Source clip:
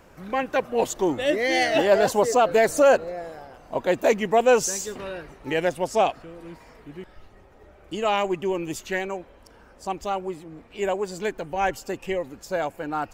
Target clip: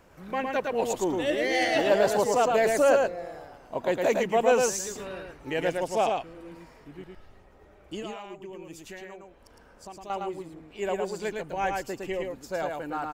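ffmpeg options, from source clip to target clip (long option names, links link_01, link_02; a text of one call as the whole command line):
ffmpeg -i in.wav -filter_complex "[0:a]asettb=1/sr,asplit=3[link_01][link_02][link_03];[link_01]atrim=end=8.024[link_04];[link_02]atrim=start=8.02:end=10.1,asetpts=PTS-STARTPTS,afade=type=in:duration=0.004:curve=qsin,afade=type=out:start_time=2.076:duration=0.004:curve=qsin,acompressor=threshold=-39dB:ratio=3[link_05];[link_03]atrim=start=10.096[link_06];[link_04][link_05]acrossfade=duration=0.004:curve1=hsin:curve2=qsin[link_07];[link_07][link_06]acrossfade=duration=0.004:curve1=qsin:curve2=hsin,aecho=1:1:110:0.668,volume=-5dB" out.wav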